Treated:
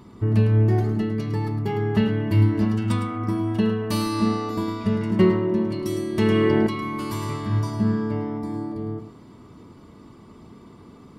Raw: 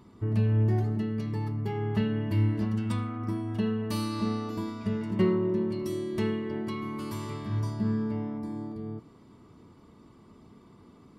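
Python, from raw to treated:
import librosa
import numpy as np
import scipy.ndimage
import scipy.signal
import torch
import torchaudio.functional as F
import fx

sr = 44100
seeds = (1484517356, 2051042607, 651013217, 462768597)

y = x + 10.0 ** (-9.5 / 20.0) * np.pad(x, (int(107 * sr / 1000.0), 0))[:len(x)]
y = fx.env_flatten(y, sr, amount_pct=100, at=(6.19, 6.67))
y = y * 10.0 ** (7.5 / 20.0)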